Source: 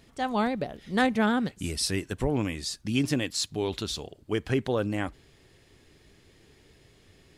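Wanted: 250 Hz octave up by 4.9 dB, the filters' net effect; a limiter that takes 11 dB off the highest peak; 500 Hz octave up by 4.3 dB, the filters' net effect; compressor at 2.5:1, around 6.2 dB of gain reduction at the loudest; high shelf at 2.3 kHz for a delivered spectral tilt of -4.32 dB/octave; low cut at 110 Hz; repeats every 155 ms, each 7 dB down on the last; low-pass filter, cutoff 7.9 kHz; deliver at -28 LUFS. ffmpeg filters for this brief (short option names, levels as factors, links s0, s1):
-af "highpass=110,lowpass=7900,equalizer=f=250:t=o:g=5,equalizer=f=500:t=o:g=3.5,highshelf=f=2300:g=4,acompressor=threshold=0.0562:ratio=2.5,alimiter=limit=0.0631:level=0:latency=1,aecho=1:1:155|310|465|620|775:0.447|0.201|0.0905|0.0407|0.0183,volume=1.78"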